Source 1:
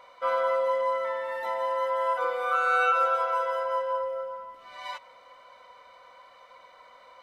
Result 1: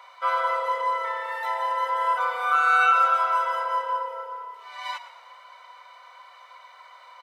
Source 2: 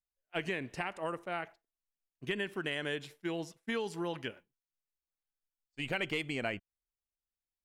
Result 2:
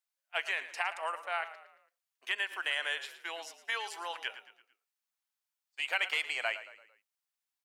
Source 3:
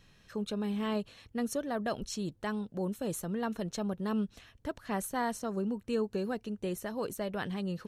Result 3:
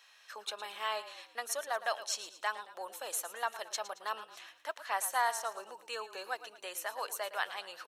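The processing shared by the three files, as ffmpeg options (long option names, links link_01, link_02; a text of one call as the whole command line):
ffmpeg -i in.wav -filter_complex "[0:a]highpass=frequency=740:width=0.5412,highpass=frequency=740:width=1.3066,asplit=5[link_01][link_02][link_03][link_04][link_05];[link_02]adelay=112,afreqshift=-33,volume=-14dB[link_06];[link_03]adelay=224,afreqshift=-66,volume=-21.1dB[link_07];[link_04]adelay=336,afreqshift=-99,volume=-28.3dB[link_08];[link_05]adelay=448,afreqshift=-132,volume=-35.4dB[link_09];[link_01][link_06][link_07][link_08][link_09]amix=inputs=5:normalize=0,volume=5dB" out.wav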